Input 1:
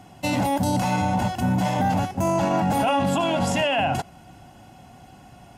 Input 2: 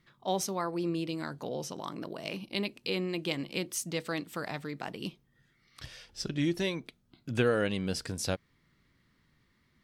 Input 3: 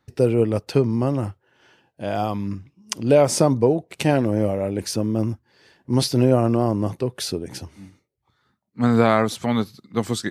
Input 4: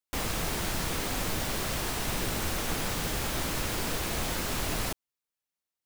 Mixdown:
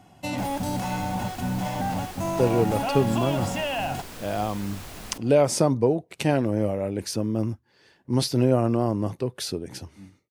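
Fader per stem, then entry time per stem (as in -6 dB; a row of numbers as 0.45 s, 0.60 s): -6.0 dB, mute, -3.5 dB, -9.5 dB; 0.00 s, mute, 2.20 s, 0.25 s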